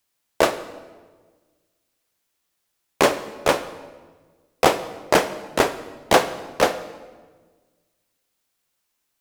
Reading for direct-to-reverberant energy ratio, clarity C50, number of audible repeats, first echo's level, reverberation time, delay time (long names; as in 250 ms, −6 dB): 11.0 dB, 13.0 dB, no echo audible, no echo audible, 1.4 s, no echo audible